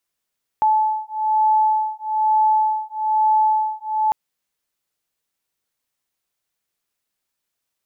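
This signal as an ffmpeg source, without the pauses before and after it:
-f lavfi -i "aevalsrc='0.119*(sin(2*PI*865*t)+sin(2*PI*866.1*t))':d=3.5:s=44100"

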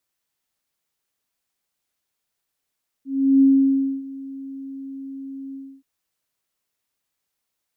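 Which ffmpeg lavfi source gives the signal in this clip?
-f lavfi -i "aevalsrc='0.316*sin(2*PI*271*t)':d=2.775:s=44100,afade=t=in:d=0.361,afade=t=out:st=0.361:d=0.61:silence=0.0891,afade=t=out:st=2.49:d=0.285"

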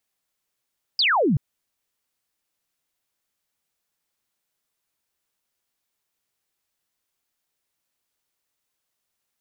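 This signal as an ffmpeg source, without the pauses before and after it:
-f lavfi -i "aevalsrc='0.15*clip(t/0.002,0,1)*clip((0.38-t)/0.002,0,1)*sin(2*PI*5100*0.38/log(120/5100)*(exp(log(120/5100)*t/0.38)-1))':d=0.38:s=44100"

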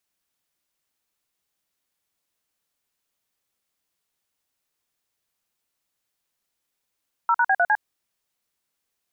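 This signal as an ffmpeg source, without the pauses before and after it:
-f lavfi -i "aevalsrc='0.119*clip(min(mod(t,0.102),0.054-mod(t,0.102))/0.002,0,1)*(eq(floor(t/0.102),0)*(sin(2*PI*941*mod(t,0.102))+sin(2*PI*1336*mod(t,0.102)))+eq(floor(t/0.102),1)*(sin(2*PI*941*mod(t,0.102))+sin(2*PI*1477*mod(t,0.102)))+eq(floor(t/0.102),2)*(sin(2*PI*770*mod(t,0.102))+sin(2*PI*1633*mod(t,0.102)))+eq(floor(t/0.102),3)*(sin(2*PI*697*mod(t,0.102))+sin(2*PI*1477*mod(t,0.102)))+eq(floor(t/0.102),4)*(sin(2*PI*852*mod(t,0.102))+sin(2*PI*1633*mod(t,0.102))))':d=0.51:s=44100"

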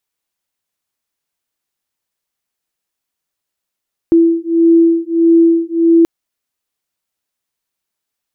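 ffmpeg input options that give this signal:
-f lavfi -i "aevalsrc='0.299*(sin(2*PI*332*t)+sin(2*PI*333.6*t))':d=1.93:s=44100"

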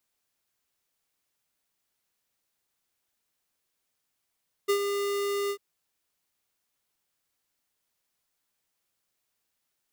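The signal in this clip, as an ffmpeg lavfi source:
-f lavfi -i "aevalsrc='0.075*(2*lt(mod(403*t,1),0.5)-1)':d=0.895:s=44100,afade=t=in:d=0.019,afade=t=out:st=0.019:d=0.084:silence=0.473,afade=t=out:st=0.82:d=0.075"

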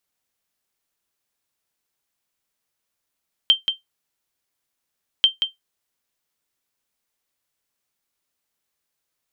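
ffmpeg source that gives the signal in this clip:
-f lavfi -i "aevalsrc='0.531*(sin(2*PI*3140*mod(t,1.74))*exp(-6.91*mod(t,1.74)/0.15)+0.447*sin(2*PI*3140*max(mod(t,1.74)-0.18,0))*exp(-6.91*max(mod(t,1.74)-0.18,0)/0.15))':d=3.48:s=44100"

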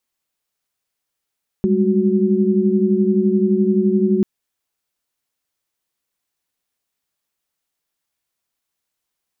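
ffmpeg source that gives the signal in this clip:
-f lavfi -i "aevalsrc='0.133*(sin(2*PI*196*t)+sin(2*PI*207.65*t)+sin(2*PI*369.99*t))':d=2.59:s=44100"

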